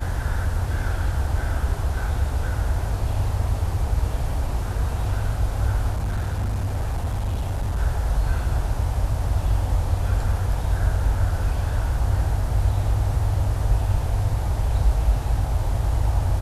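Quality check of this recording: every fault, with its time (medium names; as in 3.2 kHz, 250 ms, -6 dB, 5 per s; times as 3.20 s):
5.93–7.79 s: clipped -20.5 dBFS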